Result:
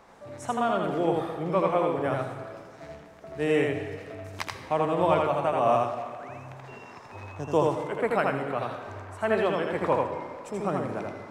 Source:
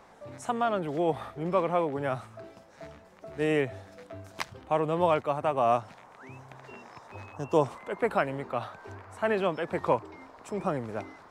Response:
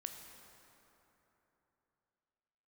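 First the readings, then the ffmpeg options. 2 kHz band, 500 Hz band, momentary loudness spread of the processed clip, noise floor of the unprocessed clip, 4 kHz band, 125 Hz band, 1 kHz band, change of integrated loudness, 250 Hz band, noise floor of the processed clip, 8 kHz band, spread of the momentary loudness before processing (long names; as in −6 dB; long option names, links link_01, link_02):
+2.5 dB, +2.5 dB, 19 LU, −55 dBFS, +2.5 dB, +2.5 dB, +2.5 dB, +2.0 dB, +3.0 dB, −48 dBFS, can't be measured, 21 LU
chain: -filter_complex "[0:a]asplit=2[link_01][link_02];[1:a]atrim=start_sample=2205,asetrate=79380,aresample=44100,adelay=82[link_03];[link_02][link_03]afir=irnorm=-1:irlink=0,volume=7dB[link_04];[link_01][link_04]amix=inputs=2:normalize=0"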